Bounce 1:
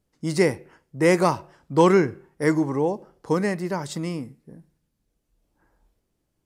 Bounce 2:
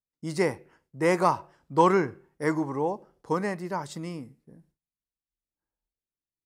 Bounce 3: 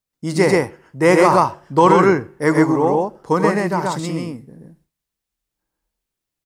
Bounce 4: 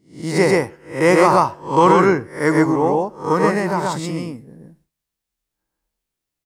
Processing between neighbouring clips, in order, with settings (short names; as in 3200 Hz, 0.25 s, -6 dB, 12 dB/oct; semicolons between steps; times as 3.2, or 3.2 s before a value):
gate with hold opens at -51 dBFS; dynamic EQ 1000 Hz, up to +8 dB, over -36 dBFS, Q 1.1; gain -7 dB
on a send: loudspeakers at several distances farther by 29 m -11 dB, 44 m -1 dB; on the sum: maximiser +10.5 dB; gain -1 dB
spectral swells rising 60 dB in 0.38 s; gain -1.5 dB